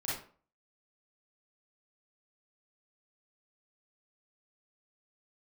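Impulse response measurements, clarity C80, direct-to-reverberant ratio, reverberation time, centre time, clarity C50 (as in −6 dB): 7.0 dB, −8.0 dB, 0.45 s, 54 ms, −0.5 dB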